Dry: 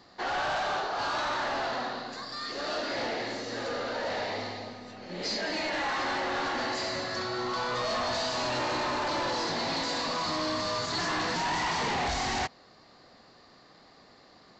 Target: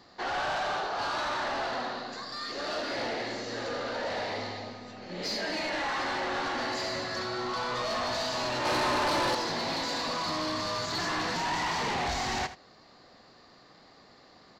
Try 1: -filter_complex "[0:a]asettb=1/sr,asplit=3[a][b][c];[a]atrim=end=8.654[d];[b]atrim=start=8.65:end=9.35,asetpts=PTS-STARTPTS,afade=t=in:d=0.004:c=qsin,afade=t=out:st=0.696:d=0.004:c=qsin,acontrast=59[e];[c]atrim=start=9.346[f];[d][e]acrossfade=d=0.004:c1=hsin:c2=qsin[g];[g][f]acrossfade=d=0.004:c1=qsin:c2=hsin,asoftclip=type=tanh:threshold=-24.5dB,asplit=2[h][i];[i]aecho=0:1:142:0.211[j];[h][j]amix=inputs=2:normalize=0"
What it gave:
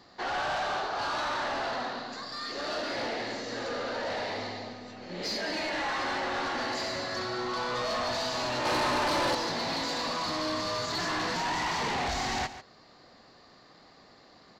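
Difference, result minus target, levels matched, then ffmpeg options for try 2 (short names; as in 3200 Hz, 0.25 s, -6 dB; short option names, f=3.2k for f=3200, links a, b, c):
echo 64 ms late
-filter_complex "[0:a]asettb=1/sr,asplit=3[a][b][c];[a]atrim=end=8.654[d];[b]atrim=start=8.65:end=9.35,asetpts=PTS-STARTPTS,afade=t=in:d=0.004:c=qsin,afade=t=out:st=0.696:d=0.004:c=qsin,acontrast=59[e];[c]atrim=start=9.346[f];[d][e]acrossfade=d=0.004:c1=hsin:c2=qsin[g];[g][f]acrossfade=d=0.004:c1=qsin:c2=hsin,asoftclip=type=tanh:threshold=-24.5dB,asplit=2[h][i];[i]aecho=0:1:78:0.211[j];[h][j]amix=inputs=2:normalize=0"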